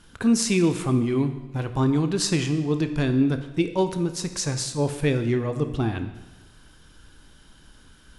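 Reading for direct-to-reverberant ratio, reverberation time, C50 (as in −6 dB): 8.0 dB, 1.1 s, 10.5 dB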